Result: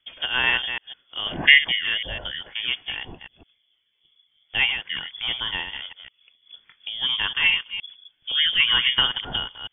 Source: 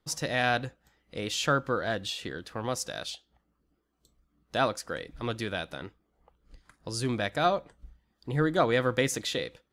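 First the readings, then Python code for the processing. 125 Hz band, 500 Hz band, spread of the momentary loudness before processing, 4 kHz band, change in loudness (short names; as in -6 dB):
-8.5 dB, -13.5 dB, 14 LU, +16.0 dB, +8.5 dB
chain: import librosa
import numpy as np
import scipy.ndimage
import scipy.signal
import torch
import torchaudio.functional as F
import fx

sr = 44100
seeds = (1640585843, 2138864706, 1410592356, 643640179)

y = fx.reverse_delay(x, sr, ms=156, wet_db=-7.5)
y = fx.spec_box(y, sr, start_s=1.28, length_s=0.3, low_hz=540.0, high_hz=1900.0, gain_db=9)
y = fx.freq_invert(y, sr, carrier_hz=3400)
y = F.gain(torch.from_numpy(y), 4.5).numpy()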